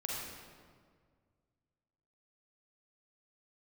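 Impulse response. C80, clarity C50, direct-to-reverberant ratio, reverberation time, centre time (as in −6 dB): 0.5 dB, −2.5 dB, −4.0 dB, 1.8 s, 107 ms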